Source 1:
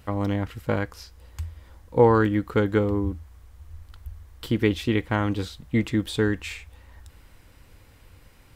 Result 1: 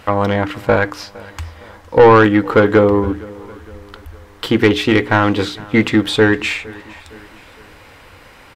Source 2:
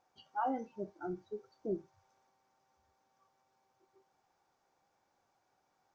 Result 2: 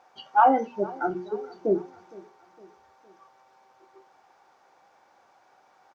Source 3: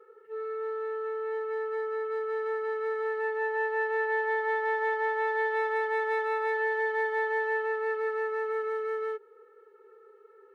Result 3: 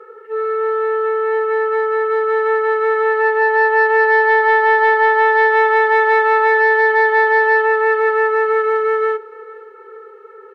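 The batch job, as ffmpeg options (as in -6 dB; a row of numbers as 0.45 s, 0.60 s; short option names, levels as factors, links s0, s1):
-filter_complex "[0:a]asplit=2[s0][s1];[s1]highpass=f=720:p=1,volume=8.91,asoftclip=type=tanh:threshold=0.562[s2];[s0][s2]amix=inputs=2:normalize=0,lowpass=f=1900:p=1,volume=0.501,bandreject=f=60:t=h:w=6,bandreject=f=120:t=h:w=6,bandreject=f=180:t=h:w=6,bandreject=f=240:t=h:w=6,bandreject=f=300:t=h:w=6,bandreject=f=360:t=h:w=6,bandreject=f=420:t=h:w=6,apsyclip=2.82,asplit=2[s3][s4];[s4]aecho=0:1:461|922|1383:0.0794|0.0389|0.0191[s5];[s3][s5]amix=inputs=2:normalize=0,volume=0.794"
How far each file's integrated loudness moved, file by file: +10.5 LU, +15.5 LU, +16.0 LU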